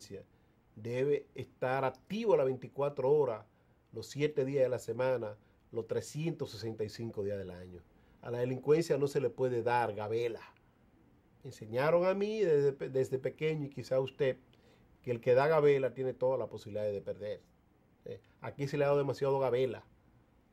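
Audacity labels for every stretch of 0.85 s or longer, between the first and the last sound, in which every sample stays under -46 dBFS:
10.470000	11.450000	silence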